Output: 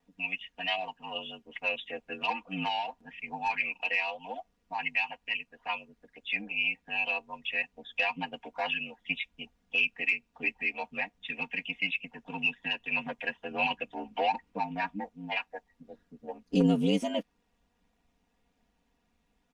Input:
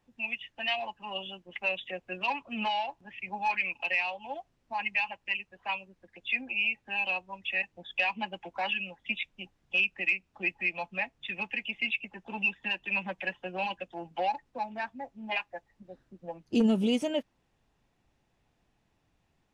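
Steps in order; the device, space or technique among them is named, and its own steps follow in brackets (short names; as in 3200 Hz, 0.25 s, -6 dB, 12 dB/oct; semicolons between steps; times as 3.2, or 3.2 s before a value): 13.51–15.04 fifteen-band EQ 100 Hz +10 dB, 250 Hz +7 dB, 1000 Hz +4 dB, 2500 Hz +7 dB; ring-modulated robot voice (ring modulator 49 Hz; comb 4.2 ms, depth 87%)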